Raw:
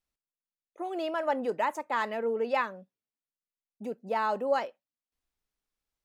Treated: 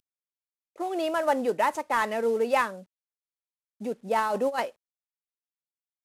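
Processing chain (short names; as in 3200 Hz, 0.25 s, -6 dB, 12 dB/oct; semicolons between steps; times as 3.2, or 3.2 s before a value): CVSD 64 kbps; 4.18–4.62 negative-ratio compressor -30 dBFS, ratio -0.5; gain +4.5 dB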